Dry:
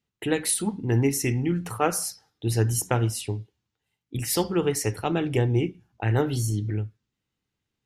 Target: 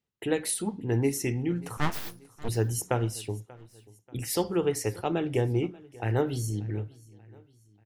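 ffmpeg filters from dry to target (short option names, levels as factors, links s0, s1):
-filter_complex "[0:a]equalizer=f=520:w=0.94:g=4.5,asettb=1/sr,asplit=3[s0][s1][s2];[s0]atrim=end=1.774[s3];[s1]atrim=start=1.77:end=2.49,asetpts=PTS-STARTPTS,afade=t=in:d=0.004:c=qsin,afade=t=out:st=0.716:d=0.004:c=qsin,aeval=exprs='abs(val(0))':c=same[s4];[s2]atrim=start=2.486[s5];[s3][s4]acrossfade=d=0.004:c1=hsin:c2=qsin[s6];[s6][s5]acrossfade=d=0.004:c1=qsin:c2=hsin,aecho=1:1:586|1172|1758:0.0794|0.0334|0.014,volume=0.531"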